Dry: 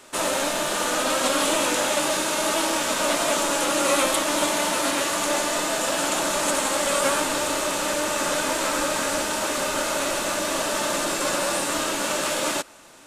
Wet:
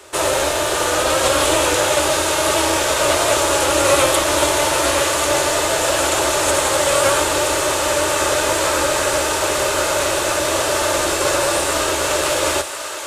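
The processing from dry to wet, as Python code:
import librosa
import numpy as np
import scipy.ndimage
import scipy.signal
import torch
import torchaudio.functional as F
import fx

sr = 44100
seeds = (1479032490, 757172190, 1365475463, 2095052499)

y = fx.octave_divider(x, sr, octaves=2, level_db=3.0)
y = fx.low_shelf_res(y, sr, hz=300.0, db=-6.5, q=3.0)
y = fx.echo_thinned(y, sr, ms=1044, feedback_pct=72, hz=580.0, wet_db=-9.5)
y = y * 10.0 ** (5.0 / 20.0)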